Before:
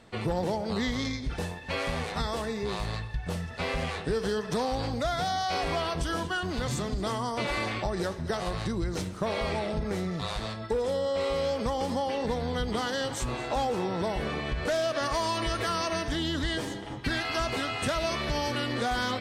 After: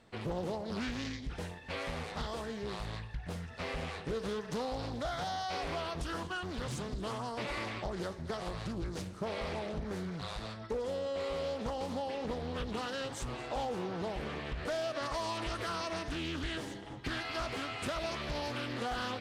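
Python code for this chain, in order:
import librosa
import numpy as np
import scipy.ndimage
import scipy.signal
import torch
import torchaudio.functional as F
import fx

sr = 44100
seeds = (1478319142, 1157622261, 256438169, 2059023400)

y = fx.doppler_dist(x, sr, depth_ms=0.6)
y = y * 10.0 ** (-7.5 / 20.0)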